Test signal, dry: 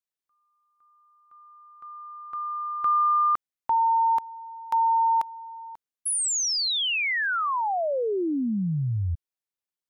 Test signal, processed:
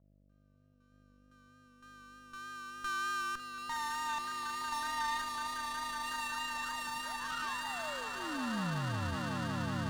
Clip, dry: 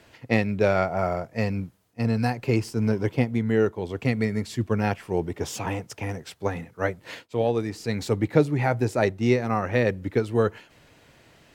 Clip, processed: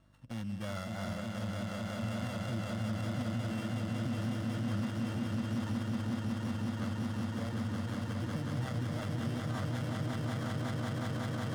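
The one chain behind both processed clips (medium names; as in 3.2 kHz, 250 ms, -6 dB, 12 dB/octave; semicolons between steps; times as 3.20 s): sorted samples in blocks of 16 samples; mains buzz 50 Hz, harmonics 13, -54 dBFS -4 dB/octave; low-pass 4.7 kHz 24 dB/octave; peaking EQ 800 Hz -10 dB 0.99 oct; on a send: echo with a slow build-up 184 ms, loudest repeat 8, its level -5 dB; on the sum: peak limiter -14.5 dBFS; bass shelf 79 Hz -11.5 dB; static phaser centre 990 Hz, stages 4; vibrato 3.3 Hz 25 cents; sliding maximum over 5 samples; trim -5.5 dB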